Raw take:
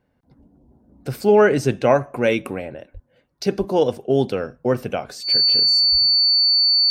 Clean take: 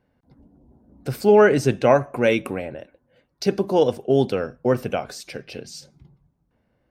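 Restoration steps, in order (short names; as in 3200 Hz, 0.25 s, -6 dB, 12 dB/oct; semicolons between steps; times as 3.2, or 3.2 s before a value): notch 4500 Hz, Q 30; 2.93–3.05 HPF 140 Hz 24 dB/oct; 3.58–3.7 HPF 140 Hz 24 dB/oct; 5.91–6.03 HPF 140 Hz 24 dB/oct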